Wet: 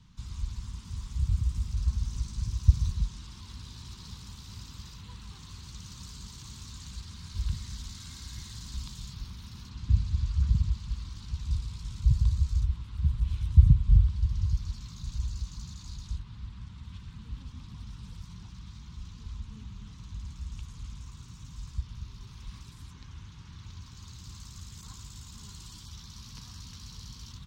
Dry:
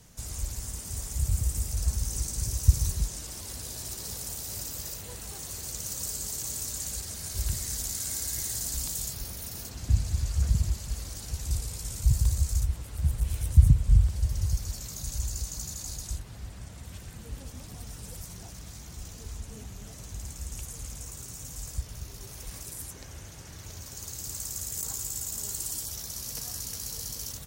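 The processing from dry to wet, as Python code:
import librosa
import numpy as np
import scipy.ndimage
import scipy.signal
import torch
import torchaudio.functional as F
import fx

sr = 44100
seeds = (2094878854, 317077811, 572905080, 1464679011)

y = fx.curve_eq(x, sr, hz=(210.0, 650.0, 1000.0, 1800.0, 3700.0, 11000.0), db=(0, -25, 0, -9, -1, -29))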